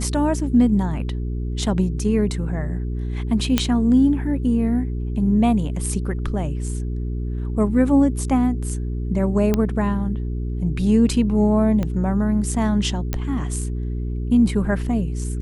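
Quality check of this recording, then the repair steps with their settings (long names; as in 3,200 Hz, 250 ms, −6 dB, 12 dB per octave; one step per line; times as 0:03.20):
mains hum 60 Hz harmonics 7 −25 dBFS
0:03.58: click −3 dBFS
0:09.54: click −7 dBFS
0:11.83: click −13 dBFS
0:13.13: click −9 dBFS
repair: click removal
hum removal 60 Hz, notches 7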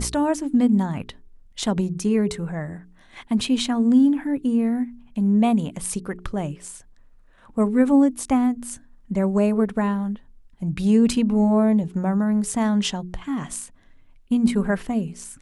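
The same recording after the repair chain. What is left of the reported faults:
0:11.83: click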